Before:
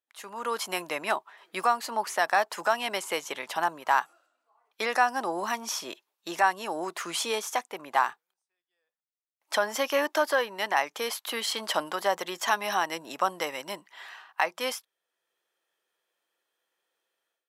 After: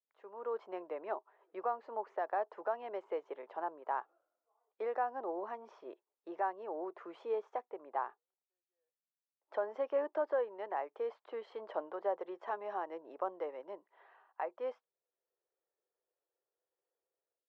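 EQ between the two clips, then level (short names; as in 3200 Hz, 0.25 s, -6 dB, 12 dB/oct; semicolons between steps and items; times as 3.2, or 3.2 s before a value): ladder band-pass 510 Hz, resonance 45%; air absorption 70 m; +2.5 dB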